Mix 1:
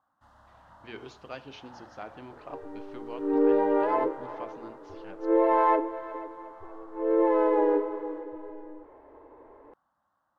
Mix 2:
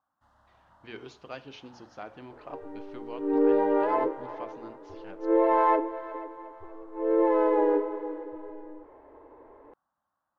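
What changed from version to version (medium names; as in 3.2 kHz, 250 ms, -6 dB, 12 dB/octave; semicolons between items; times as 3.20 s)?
first sound -6.5 dB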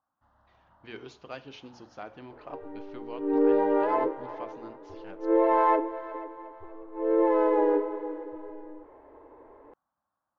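first sound: add tape spacing loss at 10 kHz 21 dB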